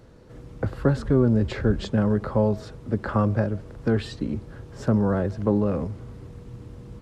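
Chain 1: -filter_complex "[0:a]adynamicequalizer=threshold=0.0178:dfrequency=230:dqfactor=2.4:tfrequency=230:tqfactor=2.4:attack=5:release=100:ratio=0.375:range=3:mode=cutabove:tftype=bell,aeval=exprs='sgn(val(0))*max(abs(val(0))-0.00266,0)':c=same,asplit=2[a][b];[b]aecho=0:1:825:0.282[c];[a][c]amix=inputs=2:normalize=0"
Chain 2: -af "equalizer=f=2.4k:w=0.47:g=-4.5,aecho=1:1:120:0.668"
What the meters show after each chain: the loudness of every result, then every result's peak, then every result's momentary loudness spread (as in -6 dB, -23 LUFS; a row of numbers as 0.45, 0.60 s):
-25.5, -23.5 LUFS; -7.0, -7.0 dBFS; 13, 18 LU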